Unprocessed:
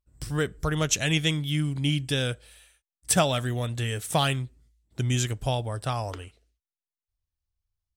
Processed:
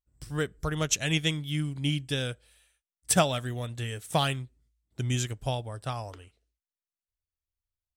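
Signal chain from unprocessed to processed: upward expansion 1.5:1, over -36 dBFS

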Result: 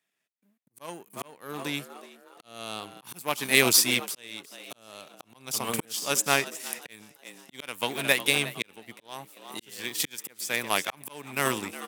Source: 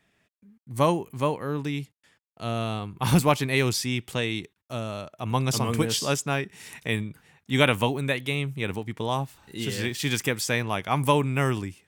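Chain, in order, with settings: peaking EQ 13 kHz +6.5 dB 0.88 oct; frequency-shifting echo 363 ms, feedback 52%, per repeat +86 Hz, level -15 dB; slow attack 532 ms; power-law waveshaper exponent 1.4; high-pass 170 Hz 12 dB/octave; tilt EQ +2 dB/octave; trim +6.5 dB

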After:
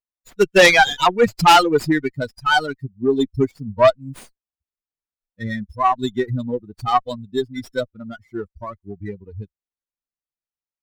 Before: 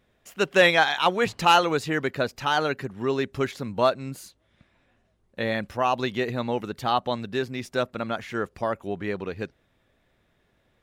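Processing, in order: expander on every frequency bin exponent 3; Chebyshev shaper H 5 -12 dB, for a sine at -9.5 dBFS; sliding maximum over 3 samples; trim +7.5 dB

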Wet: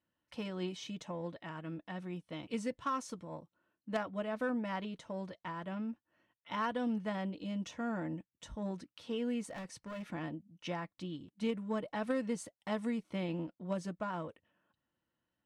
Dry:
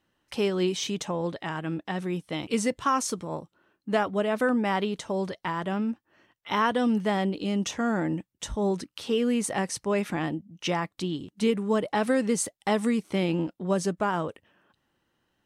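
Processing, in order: treble shelf 6.5 kHz -11 dB; Chebyshev shaper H 3 -13 dB, 5 -22 dB, 7 -32 dB, 8 -45 dB, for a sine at -11.5 dBFS; comb of notches 400 Hz; 9.49–10.04 s: hard clipper -34 dBFS, distortion -21 dB; trim -6 dB

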